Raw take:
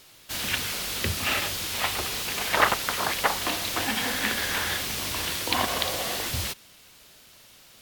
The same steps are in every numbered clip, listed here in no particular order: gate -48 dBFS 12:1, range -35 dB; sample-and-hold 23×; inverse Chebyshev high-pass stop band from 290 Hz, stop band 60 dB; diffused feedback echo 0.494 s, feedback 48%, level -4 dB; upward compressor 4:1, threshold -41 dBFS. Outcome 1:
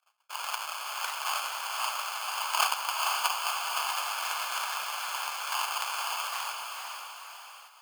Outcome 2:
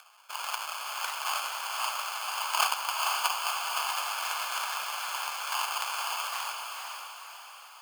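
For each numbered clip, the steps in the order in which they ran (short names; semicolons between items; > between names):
sample-and-hold > diffused feedback echo > upward compressor > inverse Chebyshev high-pass > gate; sample-and-hold > inverse Chebyshev high-pass > gate > upward compressor > diffused feedback echo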